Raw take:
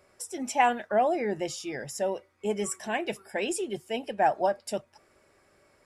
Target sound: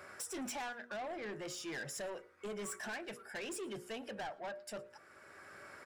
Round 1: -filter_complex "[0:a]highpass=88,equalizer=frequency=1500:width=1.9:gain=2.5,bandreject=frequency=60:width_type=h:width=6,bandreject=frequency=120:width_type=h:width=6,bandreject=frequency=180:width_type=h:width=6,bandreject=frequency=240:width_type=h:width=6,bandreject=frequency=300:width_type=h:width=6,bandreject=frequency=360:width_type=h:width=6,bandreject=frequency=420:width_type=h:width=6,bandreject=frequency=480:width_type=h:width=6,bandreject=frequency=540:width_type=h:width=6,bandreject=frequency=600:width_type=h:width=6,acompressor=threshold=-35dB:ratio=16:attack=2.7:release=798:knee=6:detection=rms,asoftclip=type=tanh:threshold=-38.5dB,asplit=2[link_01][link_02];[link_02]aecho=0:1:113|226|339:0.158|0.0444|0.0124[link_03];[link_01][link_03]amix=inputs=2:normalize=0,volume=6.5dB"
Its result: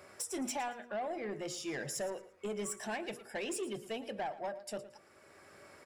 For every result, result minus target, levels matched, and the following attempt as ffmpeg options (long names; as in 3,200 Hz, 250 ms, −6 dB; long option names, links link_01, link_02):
echo-to-direct +9 dB; soft clipping: distortion −7 dB; 2,000 Hz band −4.0 dB
-filter_complex "[0:a]highpass=88,equalizer=frequency=1500:width=1.9:gain=2.5,bandreject=frequency=60:width_type=h:width=6,bandreject=frequency=120:width_type=h:width=6,bandreject=frequency=180:width_type=h:width=6,bandreject=frequency=240:width_type=h:width=6,bandreject=frequency=300:width_type=h:width=6,bandreject=frequency=360:width_type=h:width=6,bandreject=frequency=420:width_type=h:width=6,bandreject=frequency=480:width_type=h:width=6,bandreject=frequency=540:width_type=h:width=6,bandreject=frequency=600:width_type=h:width=6,acompressor=threshold=-35dB:ratio=16:attack=2.7:release=798:knee=6:detection=rms,asoftclip=type=tanh:threshold=-38.5dB,asplit=2[link_01][link_02];[link_02]aecho=0:1:113|226:0.0562|0.0157[link_03];[link_01][link_03]amix=inputs=2:normalize=0,volume=6.5dB"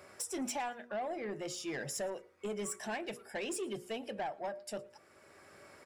soft clipping: distortion −7 dB; 2,000 Hz band −4.0 dB
-filter_complex "[0:a]highpass=88,equalizer=frequency=1500:width=1.9:gain=2.5,bandreject=frequency=60:width_type=h:width=6,bandreject=frequency=120:width_type=h:width=6,bandreject=frequency=180:width_type=h:width=6,bandreject=frequency=240:width_type=h:width=6,bandreject=frequency=300:width_type=h:width=6,bandreject=frequency=360:width_type=h:width=6,bandreject=frequency=420:width_type=h:width=6,bandreject=frequency=480:width_type=h:width=6,bandreject=frequency=540:width_type=h:width=6,bandreject=frequency=600:width_type=h:width=6,acompressor=threshold=-35dB:ratio=16:attack=2.7:release=798:knee=6:detection=rms,asoftclip=type=tanh:threshold=-45.5dB,asplit=2[link_01][link_02];[link_02]aecho=0:1:113|226:0.0562|0.0157[link_03];[link_01][link_03]amix=inputs=2:normalize=0,volume=6.5dB"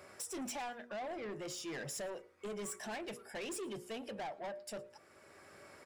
2,000 Hz band −3.5 dB
-filter_complex "[0:a]highpass=88,equalizer=frequency=1500:width=1.9:gain=12,bandreject=frequency=60:width_type=h:width=6,bandreject=frequency=120:width_type=h:width=6,bandreject=frequency=180:width_type=h:width=6,bandreject=frequency=240:width_type=h:width=6,bandreject=frequency=300:width_type=h:width=6,bandreject=frequency=360:width_type=h:width=6,bandreject=frequency=420:width_type=h:width=6,bandreject=frequency=480:width_type=h:width=6,bandreject=frequency=540:width_type=h:width=6,bandreject=frequency=600:width_type=h:width=6,acompressor=threshold=-35dB:ratio=16:attack=2.7:release=798:knee=6:detection=rms,asoftclip=type=tanh:threshold=-45.5dB,asplit=2[link_01][link_02];[link_02]aecho=0:1:113|226:0.0562|0.0157[link_03];[link_01][link_03]amix=inputs=2:normalize=0,volume=6.5dB"